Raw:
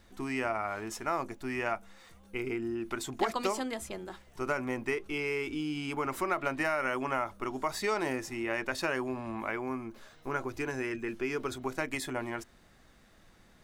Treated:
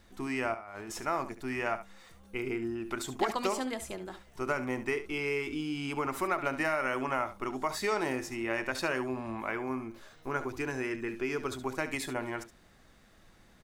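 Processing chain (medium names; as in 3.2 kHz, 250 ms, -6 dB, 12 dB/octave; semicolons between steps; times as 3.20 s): 0.54–1.03 s: compressor with a negative ratio -44 dBFS, ratio -1; on a send: delay 70 ms -12.5 dB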